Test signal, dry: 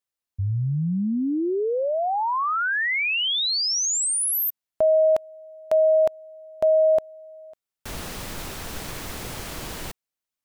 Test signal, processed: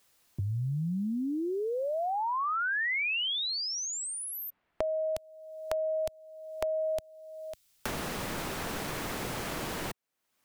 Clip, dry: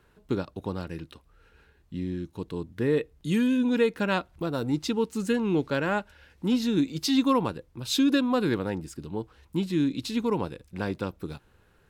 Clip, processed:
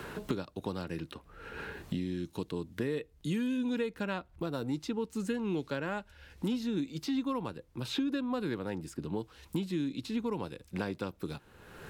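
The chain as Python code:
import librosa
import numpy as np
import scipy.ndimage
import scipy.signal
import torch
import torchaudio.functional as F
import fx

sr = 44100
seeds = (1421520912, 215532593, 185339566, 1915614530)

y = fx.band_squash(x, sr, depth_pct=100)
y = y * librosa.db_to_amplitude(-8.5)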